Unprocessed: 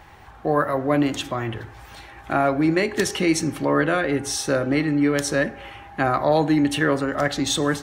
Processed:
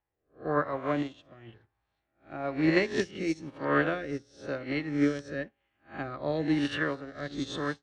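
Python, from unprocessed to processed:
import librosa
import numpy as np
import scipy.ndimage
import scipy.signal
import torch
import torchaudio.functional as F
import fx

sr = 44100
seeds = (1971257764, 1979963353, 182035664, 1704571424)

y = fx.spec_swells(x, sr, rise_s=0.74)
y = fx.dynamic_eq(y, sr, hz=4100.0, q=0.85, threshold_db=-40.0, ratio=4.0, max_db=3)
y = fx.rotary(y, sr, hz=1.0)
y = fx.air_absorb(y, sr, metres=130.0)
y = fx.upward_expand(y, sr, threshold_db=-40.0, expansion=2.5)
y = F.gain(torch.from_numpy(y), -3.5).numpy()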